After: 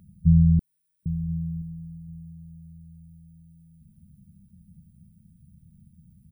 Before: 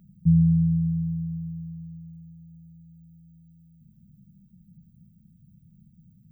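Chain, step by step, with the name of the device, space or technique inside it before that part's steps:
octave pedal (pitch-shifted copies added −12 semitones −5 dB)
0:00.59–0:01.06: inverse Chebyshev high-pass filter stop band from 300 Hz, stop band 70 dB
single-tap delay 1,025 ms −23.5 dB

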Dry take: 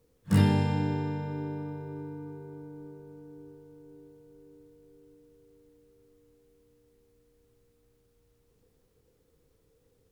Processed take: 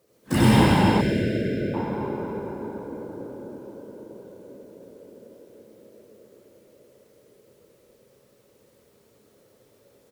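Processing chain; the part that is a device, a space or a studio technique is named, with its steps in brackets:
whispering ghost (random phases in short frames; high-pass filter 360 Hz 6 dB per octave; convolution reverb RT60 2.9 s, pre-delay 69 ms, DRR −6.5 dB)
0:01.01–0:01.74: Chebyshev band-stop filter 650–1,500 Hz, order 5
repeating echo 117 ms, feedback 36%, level −21 dB
level +5.5 dB

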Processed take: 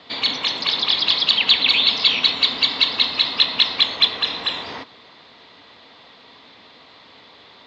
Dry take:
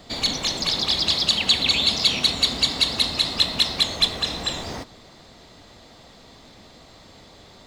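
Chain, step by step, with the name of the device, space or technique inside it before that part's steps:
guitar cabinet (loudspeaker in its box 95–3,700 Hz, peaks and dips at 270 Hz +6 dB, 450 Hz +6 dB, 1,000 Hz +6 dB)
tilt shelving filter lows −8.5 dB

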